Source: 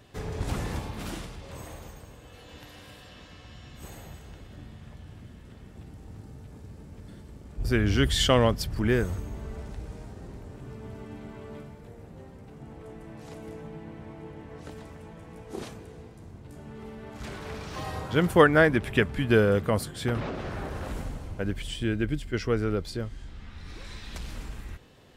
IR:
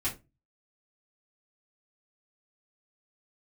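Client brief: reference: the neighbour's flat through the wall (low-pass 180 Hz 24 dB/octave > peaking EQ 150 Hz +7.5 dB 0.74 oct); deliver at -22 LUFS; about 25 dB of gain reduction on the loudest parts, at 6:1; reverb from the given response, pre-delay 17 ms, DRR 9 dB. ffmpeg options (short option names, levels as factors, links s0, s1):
-filter_complex "[0:a]acompressor=threshold=0.01:ratio=6,asplit=2[s0][s1];[1:a]atrim=start_sample=2205,adelay=17[s2];[s1][s2]afir=irnorm=-1:irlink=0,volume=0.2[s3];[s0][s3]amix=inputs=2:normalize=0,lowpass=f=180:w=0.5412,lowpass=f=180:w=1.3066,equalizer=f=150:t=o:w=0.74:g=7.5,volume=12.6"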